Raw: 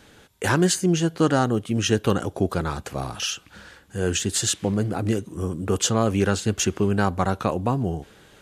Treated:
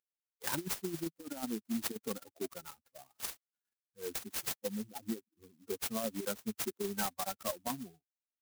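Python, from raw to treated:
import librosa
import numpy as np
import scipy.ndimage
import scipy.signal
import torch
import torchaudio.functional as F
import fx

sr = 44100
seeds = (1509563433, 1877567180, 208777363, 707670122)

y = fx.bin_expand(x, sr, power=3.0)
y = scipy.signal.sosfilt(scipy.signal.butter(4, 240.0, 'highpass', fs=sr, output='sos'), y)
y = fx.high_shelf(y, sr, hz=2100.0, db=-7.0)
y = fx.over_compress(y, sr, threshold_db=-31.0, ratio=-0.5)
y = 10.0 ** (-22.5 / 20.0) * np.tanh(y / 10.0 ** (-22.5 / 20.0))
y = fx.clock_jitter(y, sr, seeds[0], jitter_ms=0.14)
y = F.gain(torch.from_numpy(y), -2.5).numpy()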